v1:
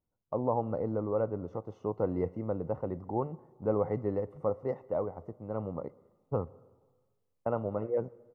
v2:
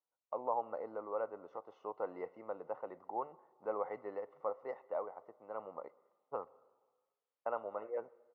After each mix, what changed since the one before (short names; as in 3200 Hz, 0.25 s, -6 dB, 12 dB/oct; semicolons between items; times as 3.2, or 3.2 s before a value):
master: add BPF 790–3600 Hz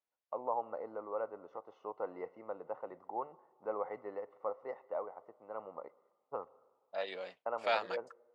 second voice: entry -1.45 s